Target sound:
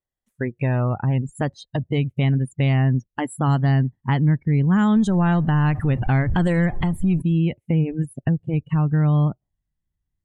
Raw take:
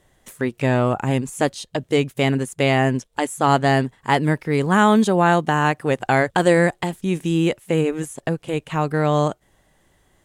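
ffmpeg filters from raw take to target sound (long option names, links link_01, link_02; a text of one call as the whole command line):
ffmpeg -i in.wav -filter_complex "[0:a]asettb=1/sr,asplit=3[link_01][link_02][link_03];[link_01]atrim=end=4.964[link_04];[link_02]atrim=start=4.96:end=7.22,asetpts=PTS-STARTPTS,afade=type=in:duration=0.004:curve=qsin,afade=type=out:start_time=2.256:duration=0.004:curve=qsin,aeval=exprs='val(0)+0.5*0.0562*sgn(val(0))':channel_layout=same[link_05];[link_03]atrim=start=7.216[link_06];[link_04][link_05]acrossfade=duration=0.004:curve1=hsin:curve2=qsin[link_07];[link_07][link_06]acrossfade=duration=0.004:curve1=qsin:curve2=hsin,afftdn=noise_reduction=34:noise_floor=-29,asubboost=boost=12:cutoff=150,acompressor=threshold=-22dB:ratio=2" out.wav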